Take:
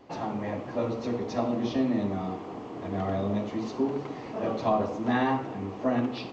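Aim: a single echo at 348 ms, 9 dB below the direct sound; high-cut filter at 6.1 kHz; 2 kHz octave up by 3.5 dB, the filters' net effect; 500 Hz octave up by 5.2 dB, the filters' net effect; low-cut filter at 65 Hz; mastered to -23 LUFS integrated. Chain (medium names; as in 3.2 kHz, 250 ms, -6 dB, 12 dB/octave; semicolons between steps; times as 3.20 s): high-pass 65 Hz; low-pass 6.1 kHz; peaking EQ 500 Hz +6.5 dB; peaking EQ 2 kHz +4 dB; delay 348 ms -9 dB; trim +3.5 dB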